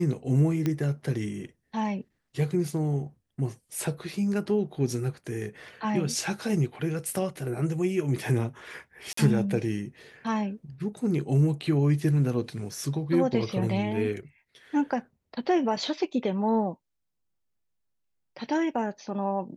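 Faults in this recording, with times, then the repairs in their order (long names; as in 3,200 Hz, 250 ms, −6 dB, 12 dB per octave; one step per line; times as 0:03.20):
0:00.66: click −15 dBFS
0:09.13–0:09.17: drop-out 44 ms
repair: click removal
repair the gap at 0:09.13, 44 ms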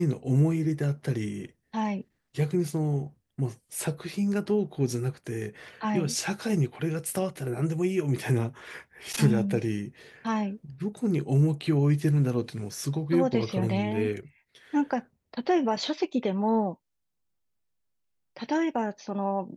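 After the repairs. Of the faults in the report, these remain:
none of them is left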